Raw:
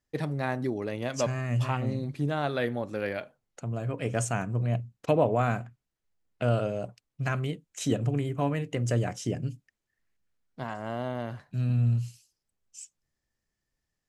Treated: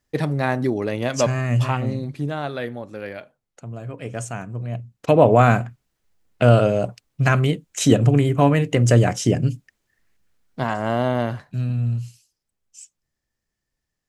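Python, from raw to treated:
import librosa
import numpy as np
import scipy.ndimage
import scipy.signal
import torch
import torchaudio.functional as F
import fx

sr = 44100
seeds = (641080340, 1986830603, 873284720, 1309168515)

y = fx.gain(x, sr, db=fx.line((1.48, 8.5), (2.82, -1.0), (4.71, -1.0), (5.3, 12.0), (11.23, 12.0), (11.74, 2.0)))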